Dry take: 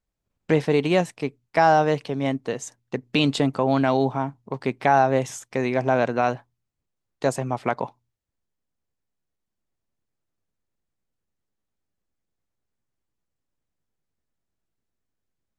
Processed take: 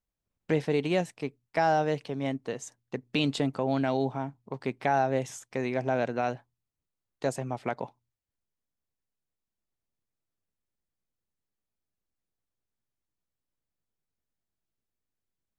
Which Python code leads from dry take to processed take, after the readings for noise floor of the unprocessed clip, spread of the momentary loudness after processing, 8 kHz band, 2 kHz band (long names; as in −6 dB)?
−82 dBFS, 12 LU, −6.5 dB, −7.5 dB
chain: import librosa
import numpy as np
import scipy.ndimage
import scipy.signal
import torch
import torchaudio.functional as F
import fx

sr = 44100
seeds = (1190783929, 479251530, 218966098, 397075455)

y = fx.dynamic_eq(x, sr, hz=1100.0, q=2.8, threshold_db=-37.0, ratio=4.0, max_db=-6)
y = y * 10.0 ** (-6.5 / 20.0)